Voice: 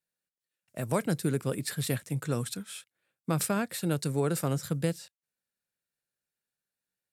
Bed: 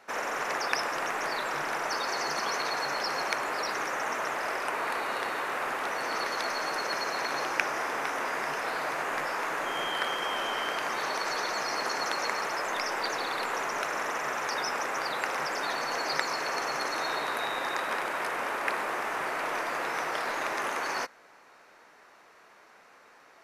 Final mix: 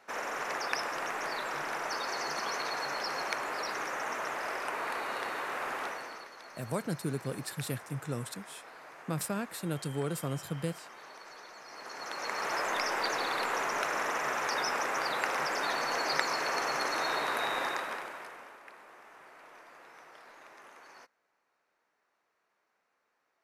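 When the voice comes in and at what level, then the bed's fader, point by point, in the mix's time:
5.80 s, -5.5 dB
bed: 5.84 s -4 dB
6.31 s -18.5 dB
11.63 s -18.5 dB
12.53 s -0.5 dB
17.63 s -0.5 dB
18.65 s -22 dB

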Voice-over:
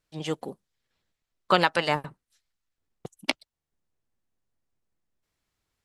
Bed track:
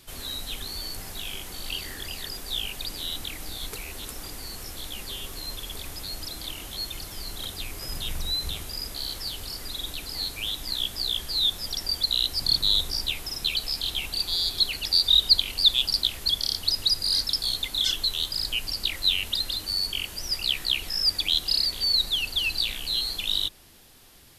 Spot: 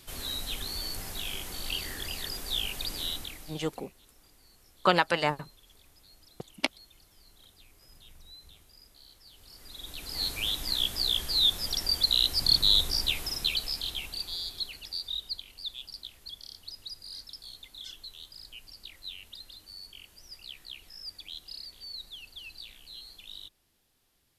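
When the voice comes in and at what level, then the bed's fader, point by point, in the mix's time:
3.35 s, -2.0 dB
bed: 3.08 s -1 dB
3.93 s -22.5 dB
9.24 s -22.5 dB
10.26 s 0 dB
13.24 s 0 dB
15.46 s -19 dB

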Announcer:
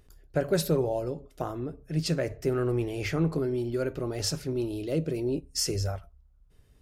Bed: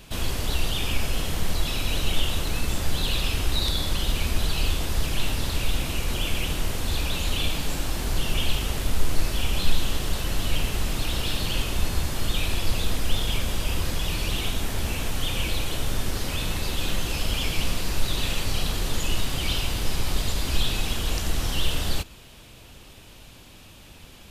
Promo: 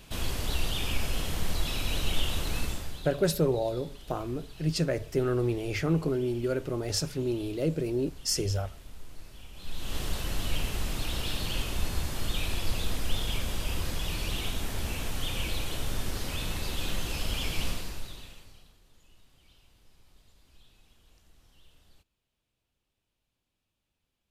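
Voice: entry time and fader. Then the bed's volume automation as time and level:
2.70 s, 0.0 dB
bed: 2.63 s -4.5 dB
3.19 s -23 dB
9.53 s -23 dB
9.98 s -5.5 dB
17.69 s -5.5 dB
18.8 s -35.5 dB

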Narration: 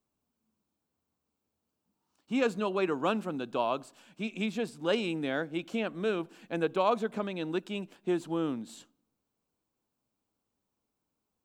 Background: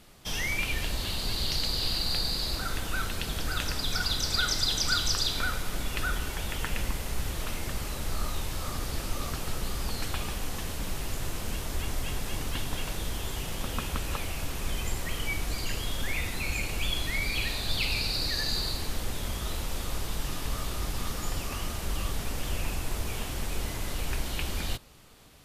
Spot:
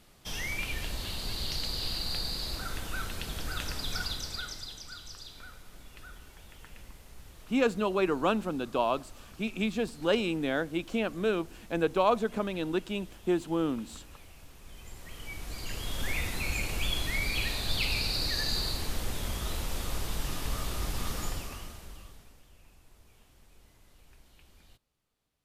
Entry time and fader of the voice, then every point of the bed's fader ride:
5.20 s, +2.0 dB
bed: 4 s -4.5 dB
4.88 s -18.5 dB
14.63 s -18.5 dB
16.07 s -1 dB
21.23 s -1 dB
22.48 s -27 dB

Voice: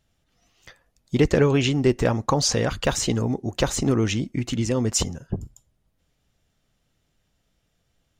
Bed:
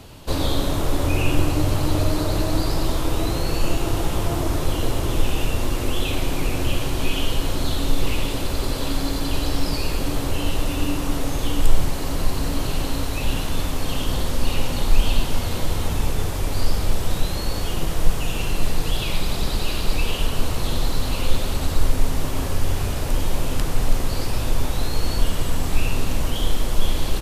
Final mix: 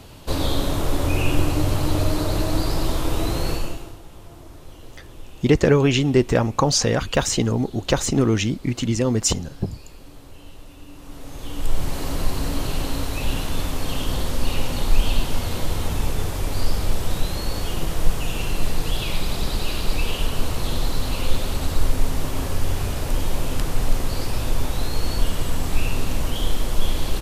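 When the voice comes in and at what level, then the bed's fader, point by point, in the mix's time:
4.30 s, +2.5 dB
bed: 3.51 s -0.5 dB
4 s -20 dB
10.86 s -20 dB
11.97 s -1 dB

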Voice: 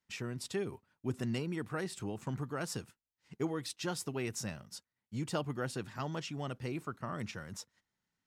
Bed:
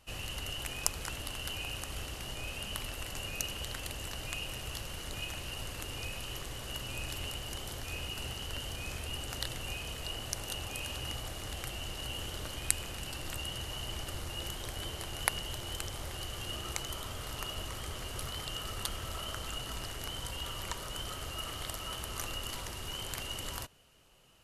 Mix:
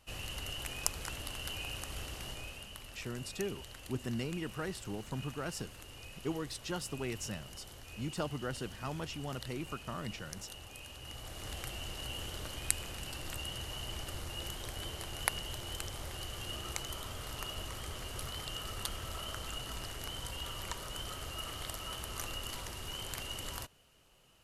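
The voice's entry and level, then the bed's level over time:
2.85 s, -1.5 dB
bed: 2.28 s -2 dB
2.74 s -10 dB
10.98 s -10 dB
11.48 s -2 dB

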